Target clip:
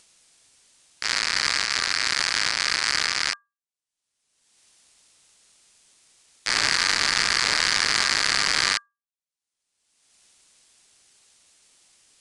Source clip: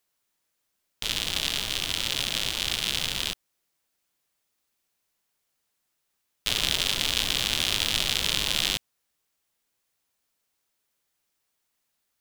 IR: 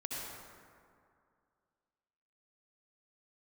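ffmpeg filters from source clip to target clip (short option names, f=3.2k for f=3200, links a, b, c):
-filter_complex "[0:a]afwtdn=0.0224,agate=range=-33dB:threshold=-24dB:ratio=3:detection=peak,bass=f=250:g=-1,treble=f=4k:g=12,acrossover=split=210[a][b];[b]acompressor=mode=upward:threshold=-29dB:ratio=2.5[c];[a][c]amix=inputs=2:normalize=0,afreqshift=-230,asplit=2[d][e];[e]highpass=f=720:p=1,volume=26dB,asoftclip=type=tanh:threshold=-2.5dB[f];[d][f]amix=inputs=2:normalize=0,lowpass=f=5.8k:p=1,volume=-6dB,aeval=exprs='val(0)*sin(2*PI*1400*n/s)':c=same,aresample=22050,aresample=44100,volume=-1.5dB"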